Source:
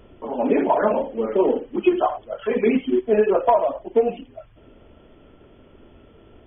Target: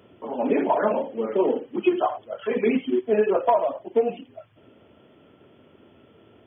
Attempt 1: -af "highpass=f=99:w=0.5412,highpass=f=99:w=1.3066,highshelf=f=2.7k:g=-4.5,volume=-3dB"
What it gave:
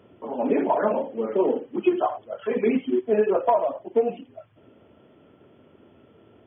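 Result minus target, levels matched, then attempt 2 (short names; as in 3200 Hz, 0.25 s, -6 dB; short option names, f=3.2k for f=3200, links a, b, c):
4000 Hz band -4.0 dB
-af "highpass=f=99:w=0.5412,highpass=f=99:w=1.3066,highshelf=f=2.7k:g=3.5,volume=-3dB"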